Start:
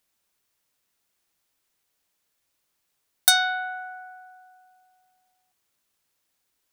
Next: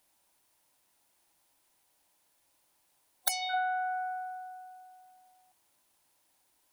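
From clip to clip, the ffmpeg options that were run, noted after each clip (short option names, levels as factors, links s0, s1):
-af "afftfilt=real='re*lt(hypot(re,im),0.355)':imag='im*lt(hypot(re,im),0.355)':win_size=1024:overlap=0.75,superequalizer=6b=1.58:8b=1.78:9b=2.51:16b=1.58,acompressor=threshold=0.0224:ratio=2.5,volume=1.33"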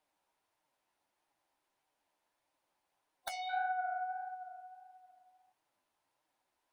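-filter_complex "[0:a]asplit=2[s0][s1];[s1]highpass=f=720:p=1,volume=2.24,asoftclip=type=tanh:threshold=0.316[s2];[s0][s2]amix=inputs=2:normalize=0,lowpass=f=1100:p=1,volume=0.501,flanger=delay=6.4:depth=7.4:regen=41:speed=1.6:shape=sinusoidal"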